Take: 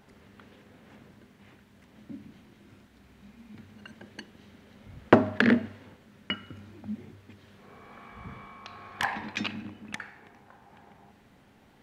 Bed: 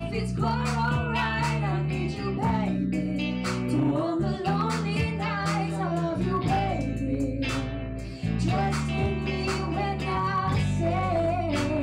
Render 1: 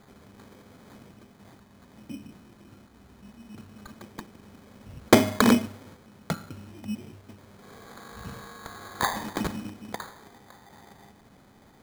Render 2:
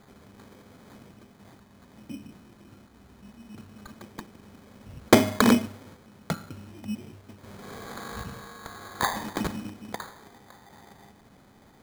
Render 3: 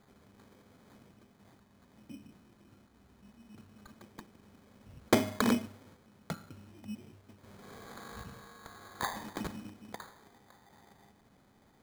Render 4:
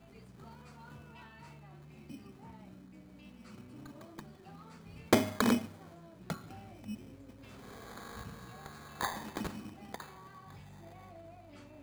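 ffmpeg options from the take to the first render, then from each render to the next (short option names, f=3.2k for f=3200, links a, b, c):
-filter_complex "[0:a]asplit=2[a][b];[b]asoftclip=type=hard:threshold=-17.5dB,volume=-7dB[c];[a][c]amix=inputs=2:normalize=0,acrusher=samples=16:mix=1:aa=0.000001"
-filter_complex "[0:a]asplit=3[a][b][c];[a]afade=t=out:st=7.43:d=0.02[d];[b]acontrast=71,afade=t=in:st=7.43:d=0.02,afade=t=out:st=8.22:d=0.02[e];[c]afade=t=in:st=8.22:d=0.02[f];[d][e][f]amix=inputs=3:normalize=0"
-af "volume=-9dB"
-filter_complex "[1:a]volume=-27.5dB[a];[0:a][a]amix=inputs=2:normalize=0"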